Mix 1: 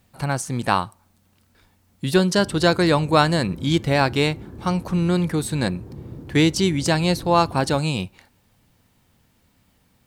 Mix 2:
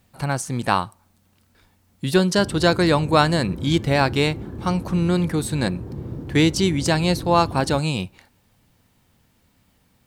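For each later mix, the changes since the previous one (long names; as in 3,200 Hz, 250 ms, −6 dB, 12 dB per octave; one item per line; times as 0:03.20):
background +5.0 dB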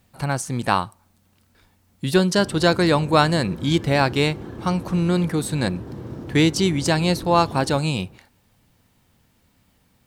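background: add spectral tilt +2.5 dB per octave
reverb: on, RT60 1.8 s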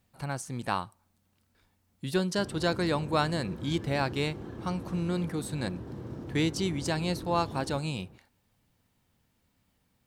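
speech −10.5 dB
background −6.0 dB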